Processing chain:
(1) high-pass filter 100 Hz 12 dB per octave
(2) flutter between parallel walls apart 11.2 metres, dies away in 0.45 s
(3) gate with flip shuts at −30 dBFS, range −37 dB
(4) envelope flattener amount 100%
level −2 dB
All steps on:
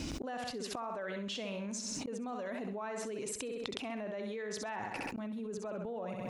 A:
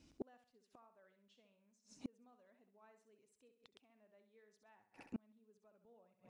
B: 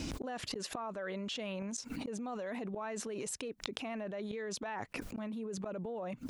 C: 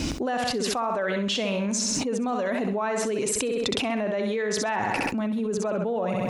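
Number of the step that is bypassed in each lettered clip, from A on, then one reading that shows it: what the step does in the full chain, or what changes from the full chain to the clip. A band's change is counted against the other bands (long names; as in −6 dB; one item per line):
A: 4, change in crest factor +4.5 dB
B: 2, change in crest factor +2.0 dB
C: 3, change in crest factor −5.0 dB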